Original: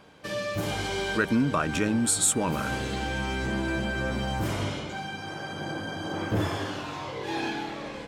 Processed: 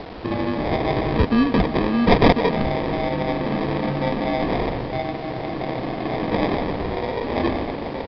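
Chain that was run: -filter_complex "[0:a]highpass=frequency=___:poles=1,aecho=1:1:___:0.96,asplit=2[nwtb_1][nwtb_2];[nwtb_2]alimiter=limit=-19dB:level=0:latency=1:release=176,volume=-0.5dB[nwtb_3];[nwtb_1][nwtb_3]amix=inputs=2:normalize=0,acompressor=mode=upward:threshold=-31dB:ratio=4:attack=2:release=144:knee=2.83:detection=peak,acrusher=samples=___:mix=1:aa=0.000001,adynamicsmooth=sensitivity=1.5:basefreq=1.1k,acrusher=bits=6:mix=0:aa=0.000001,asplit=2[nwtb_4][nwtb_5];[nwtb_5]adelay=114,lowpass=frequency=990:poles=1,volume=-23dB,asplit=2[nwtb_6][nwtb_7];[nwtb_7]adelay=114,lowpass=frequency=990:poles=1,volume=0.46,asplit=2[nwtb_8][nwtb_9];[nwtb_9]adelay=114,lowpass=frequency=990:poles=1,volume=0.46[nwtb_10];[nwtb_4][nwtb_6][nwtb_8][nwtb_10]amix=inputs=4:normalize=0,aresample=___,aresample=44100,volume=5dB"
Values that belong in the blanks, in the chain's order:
690, 4.1, 31, 11025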